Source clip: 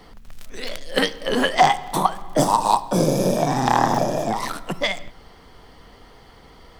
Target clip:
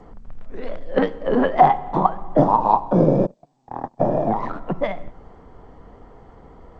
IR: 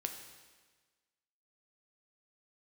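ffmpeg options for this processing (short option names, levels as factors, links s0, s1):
-filter_complex "[0:a]asplit=3[s0][s1][s2];[s0]afade=t=out:st=3.25:d=0.02[s3];[s1]agate=range=0.00398:threshold=0.224:ratio=16:detection=peak,afade=t=in:st=3.25:d=0.02,afade=t=out:st=3.99:d=0.02[s4];[s2]afade=t=in:st=3.99:d=0.02[s5];[s3][s4][s5]amix=inputs=3:normalize=0,lowpass=1000,volume=1.5" -ar 16000 -c:a g722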